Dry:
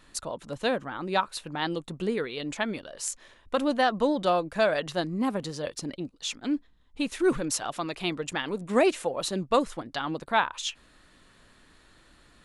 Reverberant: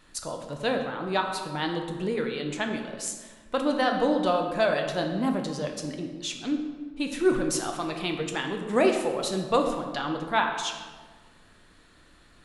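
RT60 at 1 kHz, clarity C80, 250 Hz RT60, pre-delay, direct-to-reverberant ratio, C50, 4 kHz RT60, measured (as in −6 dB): 1.4 s, 7.5 dB, 1.8 s, 5 ms, 3.0 dB, 6.0 dB, 0.90 s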